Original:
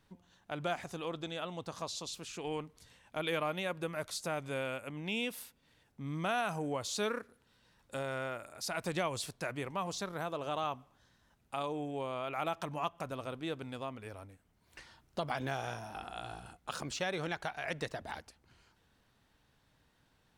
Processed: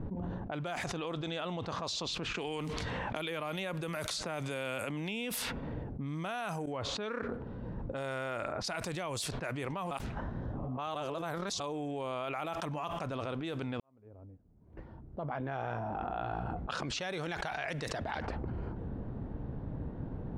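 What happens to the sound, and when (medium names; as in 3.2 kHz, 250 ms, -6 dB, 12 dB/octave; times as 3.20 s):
2.34–5.35 s: three bands compressed up and down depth 100%
6.66–8.30 s: fade in equal-power, from -19 dB
9.91–11.60 s: reverse
13.80–16.69 s: fade in quadratic
whole clip: level-controlled noise filter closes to 400 Hz, open at -33.5 dBFS; level flattener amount 100%; trim -6 dB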